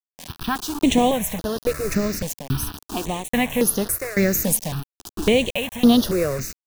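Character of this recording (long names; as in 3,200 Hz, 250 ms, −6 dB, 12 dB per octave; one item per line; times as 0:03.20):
tremolo saw down 1.2 Hz, depth 90%
a quantiser's noise floor 6 bits, dither none
notches that jump at a steady rate 3.6 Hz 360–7,700 Hz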